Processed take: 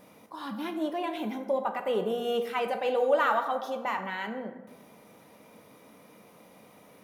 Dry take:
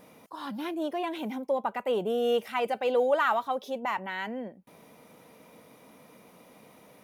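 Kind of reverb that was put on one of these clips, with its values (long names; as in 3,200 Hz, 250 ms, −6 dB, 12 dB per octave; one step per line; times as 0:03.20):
dense smooth reverb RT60 1.2 s, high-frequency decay 0.5×, DRR 5.5 dB
level −1 dB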